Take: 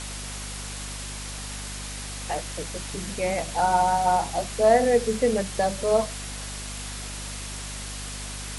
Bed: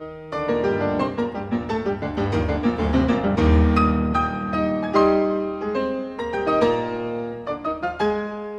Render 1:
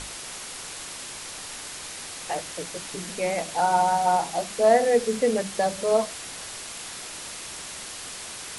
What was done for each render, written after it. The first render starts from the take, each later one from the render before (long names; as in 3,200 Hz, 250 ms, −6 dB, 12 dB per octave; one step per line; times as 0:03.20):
mains-hum notches 50/100/150/200/250 Hz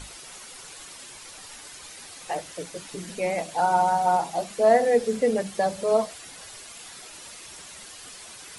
broadband denoise 9 dB, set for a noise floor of −38 dBFS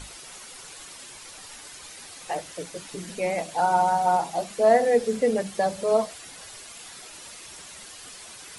no processing that can be heard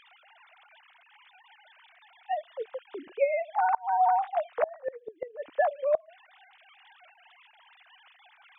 three sine waves on the formant tracks
gate with flip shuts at −14 dBFS, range −28 dB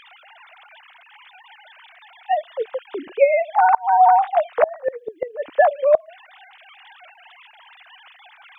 level +10.5 dB